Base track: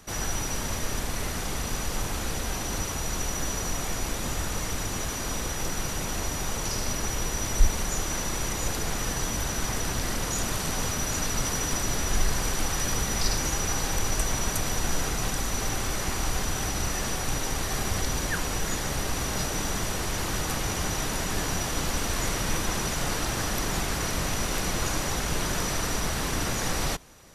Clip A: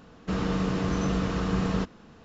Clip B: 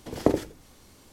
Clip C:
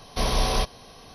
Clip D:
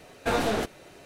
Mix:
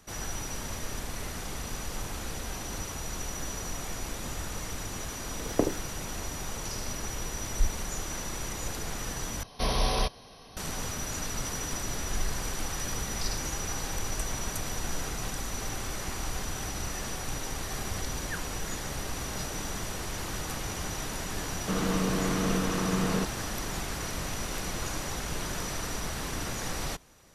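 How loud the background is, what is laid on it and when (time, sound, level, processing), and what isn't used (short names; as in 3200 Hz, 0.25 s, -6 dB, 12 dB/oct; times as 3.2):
base track -6 dB
5.33 add B -4.5 dB
9.43 replace with C -3.5 dB
21.4 add A -0.5 dB + HPF 150 Hz
not used: D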